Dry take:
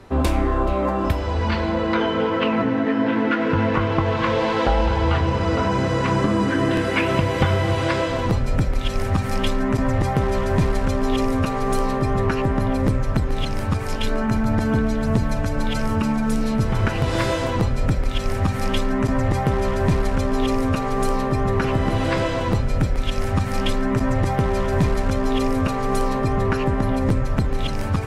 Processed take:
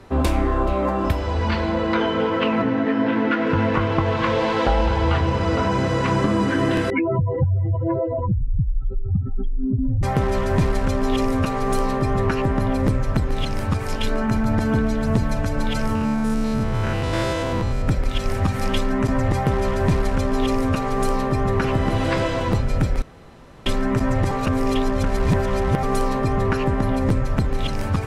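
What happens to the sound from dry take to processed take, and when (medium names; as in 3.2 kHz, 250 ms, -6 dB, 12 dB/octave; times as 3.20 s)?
2.62–3.47 s: Bessel low-pass 7.3 kHz
6.90–10.03 s: spectral contrast enhancement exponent 3.5
15.95–17.88 s: spectrogram pixelated in time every 100 ms
23.02–23.66 s: room tone
24.31–25.83 s: reverse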